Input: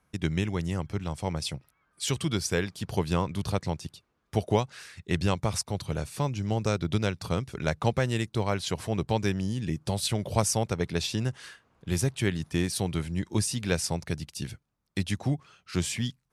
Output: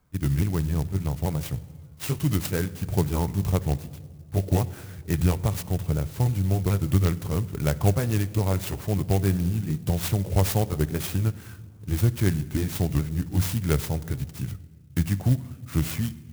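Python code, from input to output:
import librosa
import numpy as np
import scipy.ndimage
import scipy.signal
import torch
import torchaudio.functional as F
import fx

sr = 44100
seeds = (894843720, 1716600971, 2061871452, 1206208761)

y = fx.pitch_ramps(x, sr, semitones=-3.0, every_ms=419)
y = fx.low_shelf(y, sr, hz=210.0, db=9.0)
y = fx.room_shoebox(y, sr, seeds[0], volume_m3=2000.0, walls='mixed', distance_m=0.34)
y = fx.clock_jitter(y, sr, seeds[1], jitter_ms=0.07)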